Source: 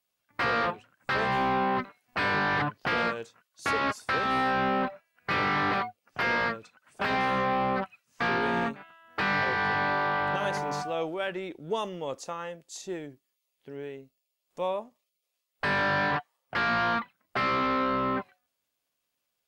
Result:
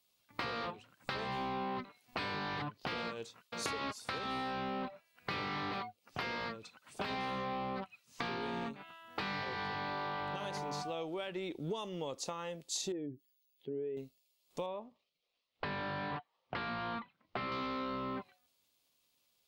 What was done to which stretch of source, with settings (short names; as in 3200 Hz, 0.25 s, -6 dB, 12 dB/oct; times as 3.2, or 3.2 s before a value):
3–3.66 echo throw 0.52 s, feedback 15%, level -16.5 dB
12.92–13.97 spectral contrast raised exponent 1.7
14.66–17.52 air absorption 230 m
whole clip: compressor 12:1, threshold -39 dBFS; fifteen-band EQ 630 Hz -3 dB, 1600 Hz -7 dB, 4000 Hz +5 dB; gain +4.5 dB